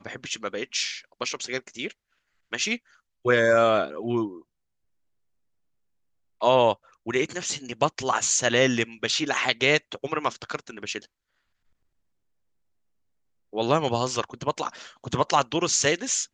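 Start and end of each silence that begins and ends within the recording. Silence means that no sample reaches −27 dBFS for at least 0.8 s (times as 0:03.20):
0:04.27–0:06.42
0:10.98–0:13.55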